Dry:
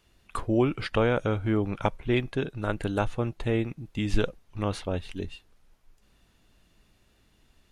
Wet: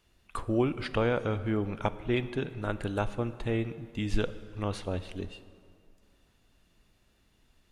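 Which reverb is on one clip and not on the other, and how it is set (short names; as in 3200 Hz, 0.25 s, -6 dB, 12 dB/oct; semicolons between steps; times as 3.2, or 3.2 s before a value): plate-style reverb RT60 2.3 s, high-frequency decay 0.75×, DRR 13 dB; gain -3.5 dB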